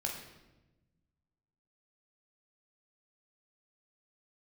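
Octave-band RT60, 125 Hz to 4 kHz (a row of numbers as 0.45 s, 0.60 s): 2.0 s, 1.7 s, 1.2 s, 0.95 s, 0.90 s, 0.80 s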